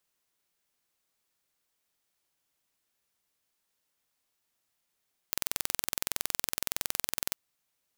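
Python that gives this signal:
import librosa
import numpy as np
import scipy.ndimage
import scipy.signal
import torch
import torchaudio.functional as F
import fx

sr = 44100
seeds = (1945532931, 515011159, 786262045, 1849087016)

y = 10.0 ** (-2.0 / 20.0) * (np.mod(np.arange(round(2.03 * sr)), round(sr / 21.6)) == 0)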